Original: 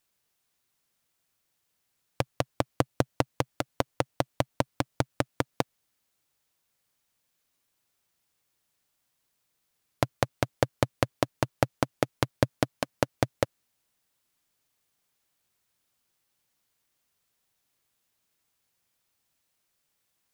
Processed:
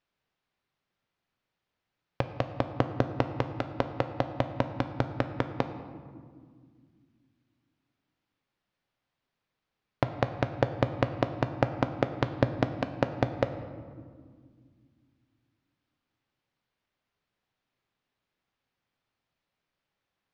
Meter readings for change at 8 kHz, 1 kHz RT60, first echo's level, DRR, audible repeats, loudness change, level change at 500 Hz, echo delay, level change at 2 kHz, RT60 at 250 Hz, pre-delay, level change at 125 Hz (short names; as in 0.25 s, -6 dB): under -15 dB, 1.7 s, none, 8.0 dB, none, 0.0 dB, 0.0 dB, none, -1.5 dB, 3.2 s, 4 ms, +1.5 dB